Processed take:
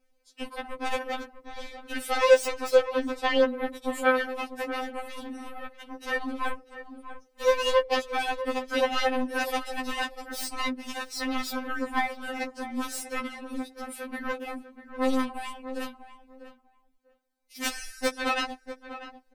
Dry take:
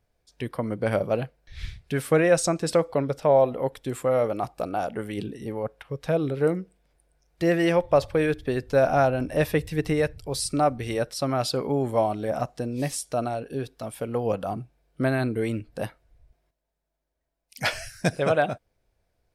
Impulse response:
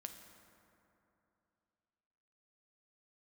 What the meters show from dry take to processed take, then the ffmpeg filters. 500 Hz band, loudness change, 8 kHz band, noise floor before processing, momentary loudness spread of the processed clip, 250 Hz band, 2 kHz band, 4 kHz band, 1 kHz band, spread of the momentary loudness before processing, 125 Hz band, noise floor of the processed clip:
−4.5 dB, −3.0 dB, −3.5 dB, −79 dBFS, 18 LU, −5.5 dB, +2.0 dB, +3.0 dB, −1.5 dB, 13 LU, below −25 dB, −66 dBFS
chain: -filter_complex "[0:a]asplit=2[link_01][link_02];[link_02]acompressor=threshold=-28dB:ratio=8,volume=2.5dB[link_03];[link_01][link_03]amix=inputs=2:normalize=0,aeval=exprs='0.501*(cos(1*acos(clip(val(0)/0.501,-1,1)))-cos(1*PI/2))+0.141*(cos(3*acos(clip(val(0)/0.501,-1,1)))-cos(3*PI/2))+0.0447*(cos(5*acos(clip(val(0)/0.501,-1,1)))-cos(5*PI/2))+0.0891*(cos(7*acos(clip(val(0)/0.501,-1,1)))-cos(7*PI/2))+0.00398*(cos(8*acos(clip(val(0)/0.501,-1,1)))-cos(8*PI/2))':channel_layout=same,asplit=2[link_04][link_05];[link_05]adelay=645,lowpass=frequency=1500:poles=1,volume=-11dB,asplit=2[link_06][link_07];[link_07]adelay=645,lowpass=frequency=1500:poles=1,volume=0.18[link_08];[link_04][link_06][link_08]amix=inputs=3:normalize=0,afftfilt=real='re*3.46*eq(mod(b,12),0)':imag='im*3.46*eq(mod(b,12),0)':win_size=2048:overlap=0.75"

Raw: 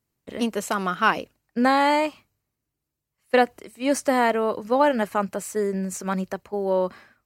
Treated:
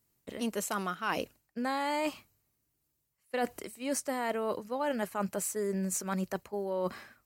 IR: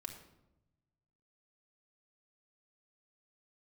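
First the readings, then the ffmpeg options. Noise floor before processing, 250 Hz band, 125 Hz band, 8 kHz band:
−83 dBFS, −10.0 dB, can't be measured, −1.5 dB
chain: -af "highshelf=frequency=6500:gain=9.5,areverse,acompressor=threshold=-30dB:ratio=6,areverse"

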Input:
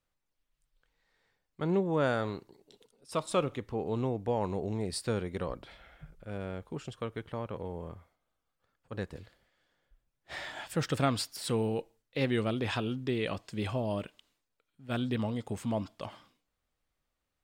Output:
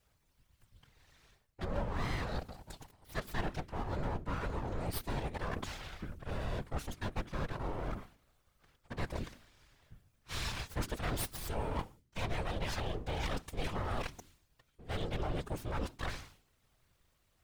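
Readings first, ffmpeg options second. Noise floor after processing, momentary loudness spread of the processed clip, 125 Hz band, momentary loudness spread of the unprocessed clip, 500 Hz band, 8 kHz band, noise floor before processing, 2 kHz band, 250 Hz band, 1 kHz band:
−75 dBFS, 9 LU, −3.5 dB, 15 LU, −8.5 dB, −3.0 dB, −84 dBFS, −2.0 dB, −9.0 dB, −2.5 dB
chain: -af "aeval=exprs='abs(val(0))':channel_layout=same,areverse,acompressor=threshold=-44dB:ratio=6,areverse,bandreject=frequency=53.96:width_type=h:width=4,bandreject=frequency=107.92:width_type=h:width=4,bandreject=frequency=161.88:width_type=h:width=4,bandreject=frequency=215.84:width_type=h:width=4,bandreject=frequency=269.8:width_type=h:width=4,bandreject=frequency=323.76:width_type=h:width=4,afftfilt=real='hypot(re,im)*cos(2*PI*random(0))':imag='hypot(re,im)*sin(2*PI*random(1))':win_size=512:overlap=0.75,volume=17.5dB"

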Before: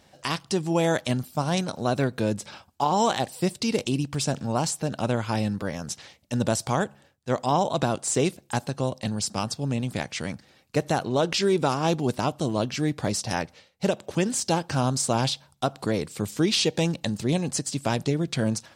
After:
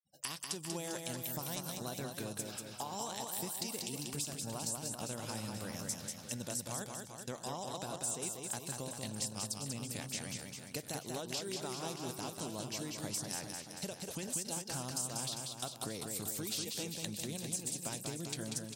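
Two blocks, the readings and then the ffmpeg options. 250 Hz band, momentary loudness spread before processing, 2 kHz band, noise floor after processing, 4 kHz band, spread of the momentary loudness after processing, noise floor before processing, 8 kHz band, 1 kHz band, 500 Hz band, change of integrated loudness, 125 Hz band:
−17.0 dB, 8 LU, −14.5 dB, −51 dBFS, −11.0 dB, 5 LU, −60 dBFS, −5.5 dB, −17.5 dB, −18.0 dB, −13.0 dB, −17.0 dB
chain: -af "aemphasis=mode=production:type=75fm,agate=range=-33dB:threshold=-45dB:ratio=3:detection=peak,acompressor=threshold=-33dB:ratio=6,highshelf=frequency=7300:gain=5.5,afftfilt=real='re*gte(hypot(re,im),0.00126)':imag='im*gte(hypot(re,im),0.00126)':win_size=1024:overlap=0.75,aecho=1:1:190|399|628.9|881.8|1160:0.631|0.398|0.251|0.158|0.1,volume=-7.5dB"

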